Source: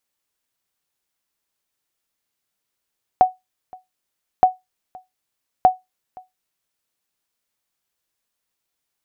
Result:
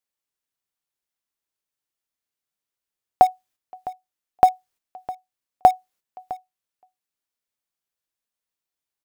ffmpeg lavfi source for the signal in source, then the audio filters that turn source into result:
-f lavfi -i "aevalsrc='0.668*(sin(2*PI*742*mod(t,1.22))*exp(-6.91*mod(t,1.22)/0.18)+0.0473*sin(2*PI*742*max(mod(t,1.22)-0.52,0))*exp(-6.91*max(mod(t,1.22)-0.52,0)/0.18))':duration=3.66:sample_rate=44100"
-filter_complex "[0:a]agate=range=-9dB:threshold=-55dB:ratio=16:detection=peak,asplit=2[link_01][link_02];[link_02]acrusher=bits=3:mix=0:aa=0.000001,volume=-12dB[link_03];[link_01][link_03]amix=inputs=2:normalize=0,aecho=1:1:658:0.126"

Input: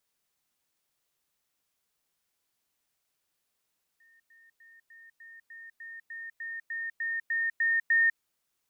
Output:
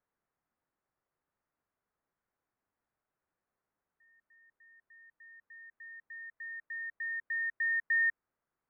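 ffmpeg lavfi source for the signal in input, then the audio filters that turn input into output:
-f lavfi -i "aevalsrc='pow(10,(-59+3*floor(t/0.3))/20)*sin(2*PI*1830*t)*clip(min(mod(t,0.3),0.2-mod(t,0.3))/0.005,0,1)':duration=4.2:sample_rate=44100"
-af "lowpass=frequency=1700:width=0.5412,lowpass=frequency=1700:width=1.3066"

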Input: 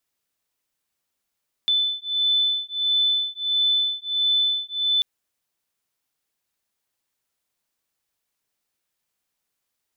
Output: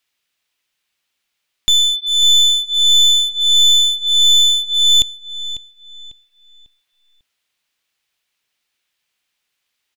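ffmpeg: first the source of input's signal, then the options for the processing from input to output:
-f lavfi -i "aevalsrc='0.075*(sin(2*PI*3510*t)+sin(2*PI*3511.5*t))':duration=3.34:sample_rate=44100"
-filter_complex "[0:a]equalizer=frequency=2800:width_type=o:width=2.1:gain=12.5,aeval=exprs='clip(val(0),-1,0.119)':channel_layout=same,asplit=2[link_01][link_02];[link_02]adelay=547,lowpass=frequency=3800:poles=1,volume=-12.5dB,asplit=2[link_03][link_04];[link_04]adelay=547,lowpass=frequency=3800:poles=1,volume=0.37,asplit=2[link_05][link_06];[link_06]adelay=547,lowpass=frequency=3800:poles=1,volume=0.37,asplit=2[link_07][link_08];[link_08]adelay=547,lowpass=frequency=3800:poles=1,volume=0.37[link_09];[link_01][link_03][link_05][link_07][link_09]amix=inputs=5:normalize=0"

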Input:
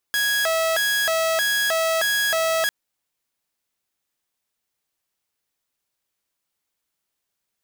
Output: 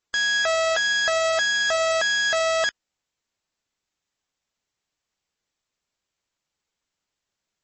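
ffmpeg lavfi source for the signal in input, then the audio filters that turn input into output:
-f lavfi -i "aevalsrc='0.15*(2*mod((1155*t+505/1.6*(0.5-abs(mod(1.6*t,1)-0.5))),1)-1)':duration=2.55:sample_rate=44100"
-af "lowshelf=frequency=96:gain=5.5" -ar 32000 -c:a libmp3lame -b:a 32k

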